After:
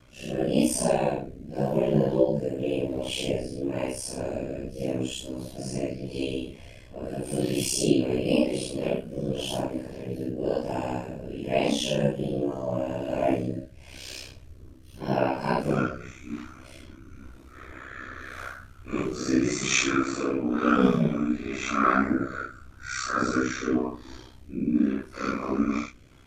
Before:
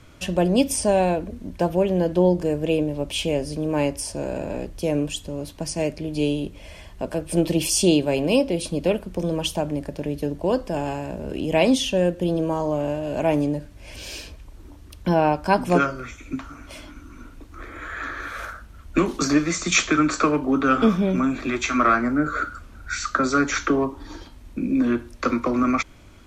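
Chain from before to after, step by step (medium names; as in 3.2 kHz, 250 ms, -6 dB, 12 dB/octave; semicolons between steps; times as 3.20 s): phase randomisation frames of 200 ms; ring modulator 32 Hz; rotary cabinet horn 0.9 Hz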